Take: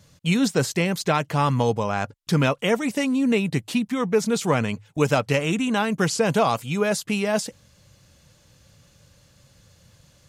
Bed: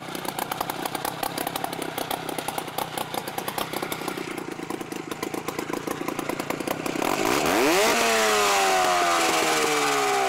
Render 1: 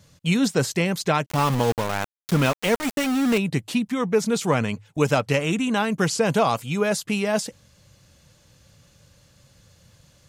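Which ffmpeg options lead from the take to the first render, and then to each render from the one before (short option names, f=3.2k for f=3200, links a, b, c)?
-filter_complex "[0:a]asettb=1/sr,asplit=3[a][b][c];[a]atrim=end=1.264[d];[b]atrim=start=1.26:end=3.38,asetpts=PTS-STARTPTS,afade=t=in:d=0.004:c=qsin,afade=t=out:st=2.116:d=0.004:c=qsin,aeval=exprs='val(0)*gte(abs(val(0)),0.0631)':c=same[e];[c]atrim=start=3.376[f];[d][e]acrossfade=d=0.004:c1=hsin:c2=qsin[g];[g][f]acrossfade=d=0.004:c1=qsin:c2=hsin"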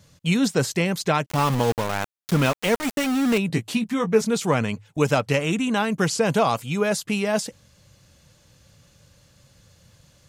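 -filter_complex "[0:a]asettb=1/sr,asplit=3[a][b][c];[a]atrim=end=3.484[d];[b]atrim=start=3.48:end=4.22,asetpts=PTS-STARTPTS,afade=t=in:d=0.004:c=qsin,afade=t=out:st=0.736:d=0.004:c=qsin,asplit=2[e][f];[f]adelay=18,volume=-6.5dB[g];[e][g]amix=inputs=2:normalize=0,atrim=end_sample=32634[h];[c]atrim=start=4.216[i];[d][h]acrossfade=d=0.004:c1=hsin:c2=qsin[j];[j][i]acrossfade=d=0.004:c1=qsin:c2=hsin"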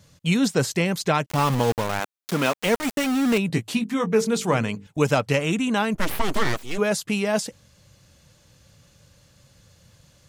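-filter_complex "[0:a]asettb=1/sr,asplit=3[a][b][c];[a]atrim=end=2.004[d];[b]atrim=start=2:end=2.55,asetpts=PTS-STARTPTS,afade=t=in:d=0.004:c=qsin,afade=t=out:st=0.546:d=0.004:c=qsin,highpass=230[e];[c]atrim=start=2.546[f];[d][e]acrossfade=d=0.004:c1=hsin:c2=qsin[g];[g][f]acrossfade=d=0.004:c1=qsin:c2=hsin,asettb=1/sr,asplit=3[h][i][j];[h]atrim=end=3.774[k];[i]atrim=start=3.77:end=4.87,asetpts=PTS-STARTPTS,afade=t=in:d=0.004:c=qsin,afade=t=out:st=1.096:d=0.004:c=qsin,bandreject=f=50:t=h:w=6,bandreject=f=100:t=h:w=6,bandreject=f=150:t=h:w=6,bandreject=f=200:t=h:w=6,bandreject=f=250:t=h:w=6,bandreject=f=300:t=h:w=6,bandreject=f=350:t=h:w=6,bandreject=f=400:t=h:w=6,bandreject=f=450:t=h:w=6[l];[j]atrim=start=4.866[m];[k][l]acrossfade=d=0.004:c1=hsin:c2=qsin[n];[n][m]acrossfade=d=0.004:c1=qsin:c2=hsin,asplit=3[o][p][q];[o]afade=t=out:st=5.94:d=0.02[r];[p]aeval=exprs='abs(val(0))':c=same,afade=t=in:st=5.94:d=0.02,afade=t=out:st=6.77:d=0.02[s];[q]afade=t=in:st=6.77:d=0.02[t];[r][s][t]amix=inputs=3:normalize=0"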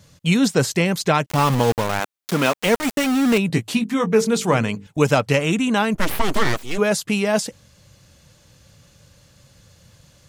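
-af "volume=3.5dB"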